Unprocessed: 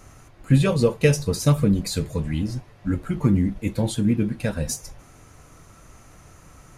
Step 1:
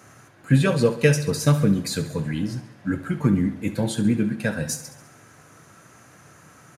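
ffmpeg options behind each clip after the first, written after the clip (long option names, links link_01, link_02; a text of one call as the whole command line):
ffmpeg -i in.wav -filter_complex "[0:a]highpass=frequency=110:width=0.5412,highpass=frequency=110:width=1.3066,equalizer=frequency=1600:width=5:gain=8.5,asplit=2[link_01][link_02];[link_02]aecho=0:1:68|136|204|272|340|408:0.211|0.12|0.0687|0.0391|0.0223|0.0127[link_03];[link_01][link_03]amix=inputs=2:normalize=0" out.wav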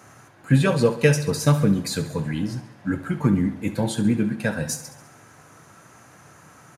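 ffmpeg -i in.wav -af "equalizer=frequency=880:width_type=o:width=0.64:gain=4.5" out.wav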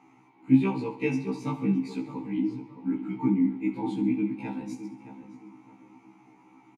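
ffmpeg -i in.wav -filter_complex "[0:a]asplit=3[link_01][link_02][link_03];[link_01]bandpass=frequency=300:width_type=q:width=8,volume=0dB[link_04];[link_02]bandpass=frequency=870:width_type=q:width=8,volume=-6dB[link_05];[link_03]bandpass=frequency=2240:width_type=q:width=8,volume=-9dB[link_06];[link_04][link_05][link_06]amix=inputs=3:normalize=0,asplit=2[link_07][link_08];[link_08]adelay=617,lowpass=frequency=1700:poles=1,volume=-11dB,asplit=2[link_09][link_10];[link_10]adelay=617,lowpass=frequency=1700:poles=1,volume=0.34,asplit=2[link_11][link_12];[link_12]adelay=617,lowpass=frequency=1700:poles=1,volume=0.34,asplit=2[link_13][link_14];[link_14]adelay=617,lowpass=frequency=1700:poles=1,volume=0.34[link_15];[link_07][link_09][link_11][link_13][link_15]amix=inputs=5:normalize=0,afftfilt=real='re*1.73*eq(mod(b,3),0)':imag='im*1.73*eq(mod(b,3),0)':win_size=2048:overlap=0.75,volume=9dB" out.wav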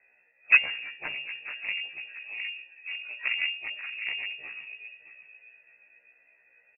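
ffmpeg -i in.wav -af "aeval=exprs='0.422*(cos(1*acos(clip(val(0)/0.422,-1,1)))-cos(1*PI/2))+0.0335*(cos(3*acos(clip(val(0)/0.422,-1,1)))-cos(3*PI/2))+0.075*(cos(7*acos(clip(val(0)/0.422,-1,1)))-cos(7*PI/2))+0.0266*(cos(8*acos(clip(val(0)/0.422,-1,1)))-cos(8*PI/2))':channel_layout=same,lowpass=frequency=2400:width_type=q:width=0.5098,lowpass=frequency=2400:width_type=q:width=0.6013,lowpass=frequency=2400:width_type=q:width=0.9,lowpass=frequency=2400:width_type=q:width=2.563,afreqshift=-2800" out.wav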